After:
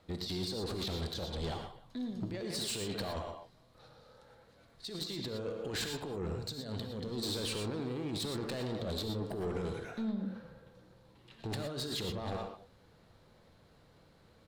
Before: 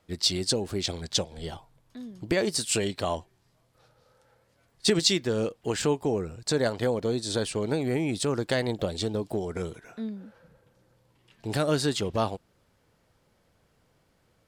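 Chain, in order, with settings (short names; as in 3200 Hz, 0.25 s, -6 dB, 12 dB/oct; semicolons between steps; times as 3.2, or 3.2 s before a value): high shelf 2700 Hz -8.5 dB; 6.91–8.75 hard clip -24.5 dBFS, distortion -18 dB; bell 4000 Hz +10.5 dB 0.33 oct; speakerphone echo 0.18 s, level -18 dB; negative-ratio compressor -34 dBFS, ratio -1; 6.5–7.11 spectral gain 280–2700 Hz -8 dB; soft clip -31.5 dBFS, distortion -11 dB; non-linear reverb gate 0.14 s rising, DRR 4.5 dB; gain -1.5 dB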